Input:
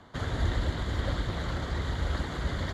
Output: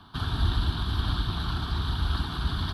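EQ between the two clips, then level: treble shelf 3.6 kHz +8.5 dB; static phaser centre 2 kHz, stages 6; +3.5 dB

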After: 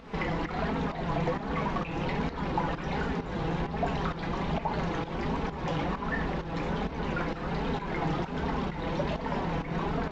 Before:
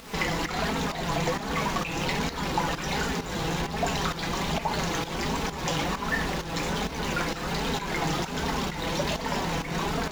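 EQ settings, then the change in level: tape spacing loss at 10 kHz 32 dB; 0.0 dB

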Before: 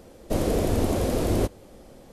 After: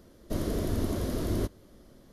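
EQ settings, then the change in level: graphic EQ with 31 bands 500 Hz -8 dB, 800 Hz -11 dB, 2.5 kHz -8 dB, 8 kHz -8 dB; -5.0 dB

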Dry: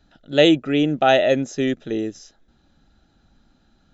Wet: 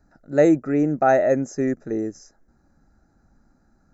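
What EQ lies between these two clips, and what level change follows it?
Butterworth band-stop 3.2 kHz, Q 0.86; -1.0 dB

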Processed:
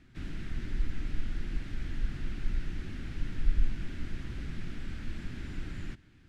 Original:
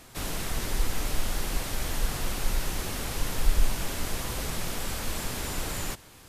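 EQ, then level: tape spacing loss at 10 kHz 21 dB; high-order bell 710 Hz -16 dB; treble shelf 3.1 kHz -10 dB; -3.0 dB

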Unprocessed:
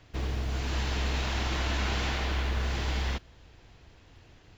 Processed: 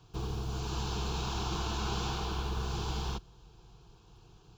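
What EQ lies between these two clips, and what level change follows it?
high-pass 42 Hz; bass shelf 93 Hz +10 dB; static phaser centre 390 Hz, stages 8; 0.0 dB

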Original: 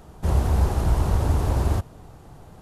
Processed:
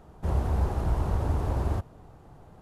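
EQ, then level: bass shelf 370 Hz -3 dB; treble shelf 2.6 kHz -10.5 dB; -3.0 dB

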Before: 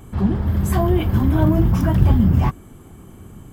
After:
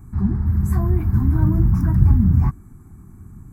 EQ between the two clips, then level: bass shelf 350 Hz +9.5 dB; static phaser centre 1.3 kHz, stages 4; -7.5 dB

